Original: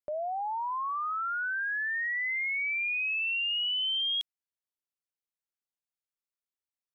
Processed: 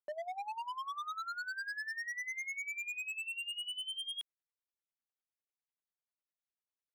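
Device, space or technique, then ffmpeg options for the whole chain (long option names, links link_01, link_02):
helicopter radio: -af "highpass=310,lowpass=2900,aeval=exprs='val(0)*pow(10,-19*(0.5-0.5*cos(2*PI*10*n/s))/20)':channel_layout=same,asoftclip=type=hard:threshold=-37dB"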